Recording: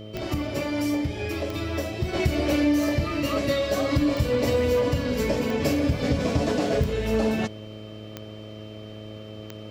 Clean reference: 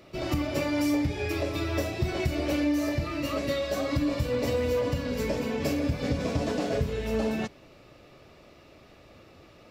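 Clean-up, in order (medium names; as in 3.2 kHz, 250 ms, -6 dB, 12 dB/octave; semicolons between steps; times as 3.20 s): de-click; de-hum 107.1 Hz, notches 6; band-stop 3.1 kHz, Q 30; trim 0 dB, from 2.13 s -4.5 dB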